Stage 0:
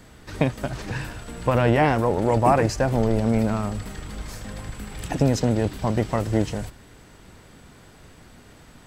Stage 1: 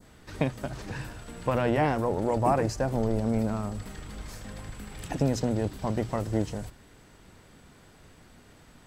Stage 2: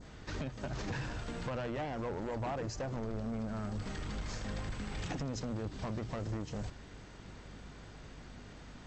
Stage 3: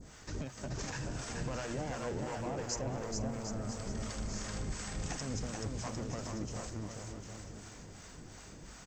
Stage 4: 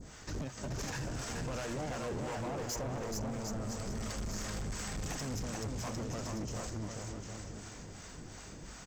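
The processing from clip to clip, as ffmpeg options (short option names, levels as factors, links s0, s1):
-af "bandreject=f=60:t=h:w=6,bandreject=f=120:t=h:w=6,adynamicequalizer=threshold=0.00794:dfrequency=2400:dqfactor=0.89:tfrequency=2400:tqfactor=0.89:attack=5:release=100:ratio=0.375:range=2.5:mode=cutabove:tftype=bell,volume=0.531"
-af "acompressor=threshold=0.0224:ratio=10,aresample=16000,volume=59.6,asoftclip=hard,volume=0.0168,aresample=44100,aeval=exprs='val(0)+0.00178*(sin(2*PI*50*n/s)+sin(2*PI*2*50*n/s)/2+sin(2*PI*3*50*n/s)/3+sin(2*PI*4*50*n/s)/4+sin(2*PI*5*50*n/s)/5)':c=same,volume=1.26"
-filter_complex "[0:a]acrossover=split=590[s0][s1];[s0]aeval=exprs='val(0)*(1-0.7/2+0.7/2*cos(2*PI*2.8*n/s))':c=same[s2];[s1]aeval=exprs='val(0)*(1-0.7/2-0.7/2*cos(2*PI*2.8*n/s))':c=same[s3];[s2][s3]amix=inputs=2:normalize=0,aexciter=amount=5.5:drive=1.4:freq=5400,asplit=2[s4][s5];[s5]aecho=0:1:430|752.5|994.4|1176|1312:0.631|0.398|0.251|0.158|0.1[s6];[s4][s6]amix=inputs=2:normalize=0,volume=1.12"
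-af "asoftclip=type=hard:threshold=0.0141,volume=1.33"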